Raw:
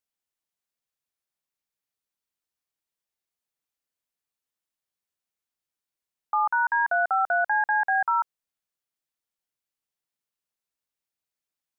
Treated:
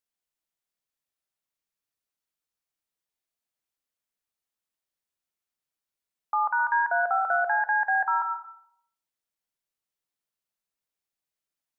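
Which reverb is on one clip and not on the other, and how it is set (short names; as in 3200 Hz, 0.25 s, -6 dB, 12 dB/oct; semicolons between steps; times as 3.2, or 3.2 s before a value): digital reverb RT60 0.7 s, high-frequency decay 0.45×, pre-delay 75 ms, DRR 7 dB; gain -1.5 dB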